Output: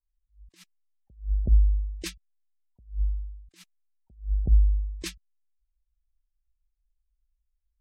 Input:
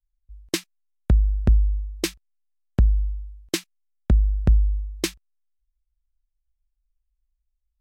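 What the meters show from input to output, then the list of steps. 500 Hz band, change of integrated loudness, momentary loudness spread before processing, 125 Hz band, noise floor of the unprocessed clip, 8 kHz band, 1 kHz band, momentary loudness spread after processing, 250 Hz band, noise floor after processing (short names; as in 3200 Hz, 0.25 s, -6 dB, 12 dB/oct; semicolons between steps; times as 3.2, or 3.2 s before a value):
-16.0 dB, -3.5 dB, 9 LU, -5.5 dB, -77 dBFS, -11.0 dB, -17.0 dB, 19 LU, -15.0 dB, -78 dBFS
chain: spectral gate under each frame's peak -25 dB strong; attack slew limiter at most 200 dB/s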